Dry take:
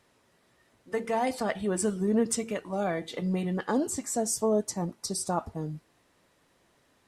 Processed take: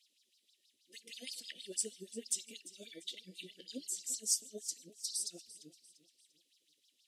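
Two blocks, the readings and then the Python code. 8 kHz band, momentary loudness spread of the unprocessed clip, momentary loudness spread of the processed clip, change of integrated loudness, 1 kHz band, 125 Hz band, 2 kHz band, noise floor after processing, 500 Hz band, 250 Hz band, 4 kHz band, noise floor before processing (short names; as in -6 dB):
-3.0 dB, 8 LU, 19 LU, -9.5 dB, under -40 dB, under -25 dB, -17.0 dB, -78 dBFS, -23.0 dB, -24.0 dB, -0.5 dB, -68 dBFS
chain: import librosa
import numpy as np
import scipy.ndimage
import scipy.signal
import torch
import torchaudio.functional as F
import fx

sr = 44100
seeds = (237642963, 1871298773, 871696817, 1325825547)

p1 = scipy.signal.sosfilt(scipy.signal.ellip(3, 1.0, 80, [310.0, 3100.0], 'bandstop', fs=sr, output='sos'), x)
p2 = fx.filter_lfo_highpass(p1, sr, shape='sine', hz=6.3, low_hz=540.0, high_hz=5200.0, q=5.2)
p3 = np.clip(10.0 ** (19.0 / 20.0) * p2, -1.0, 1.0) / 10.0 ** (19.0 / 20.0)
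p4 = p2 + F.gain(torch.from_numpy(p3), -4.0).numpy()
p5 = fx.echo_feedback(p4, sr, ms=345, feedback_pct=40, wet_db=-17.0)
y = F.gain(torch.from_numpy(p5), -8.0).numpy()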